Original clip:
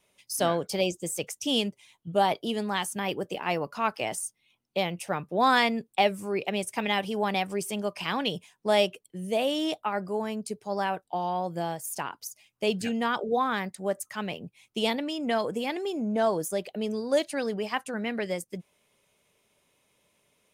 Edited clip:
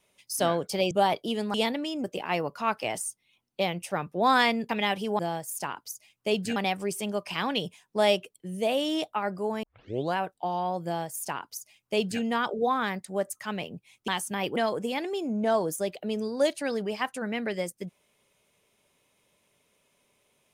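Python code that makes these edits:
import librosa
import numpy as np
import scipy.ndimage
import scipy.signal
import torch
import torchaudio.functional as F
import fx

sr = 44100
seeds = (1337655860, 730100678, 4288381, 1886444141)

y = fx.edit(x, sr, fx.cut(start_s=0.91, length_s=1.19),
    fx.swap(start_s=2.73, length_s=0.48, other_s=14.78, other_length_s=0.5),
    fx.cut(start_s=5.86, length_s=0.9),
    fx.tape_start(start_s=10.33, length_s=0.54),
    fx.duplicate(start_s=11.55, length_s=1.37, to_s=7.26), tone=tone)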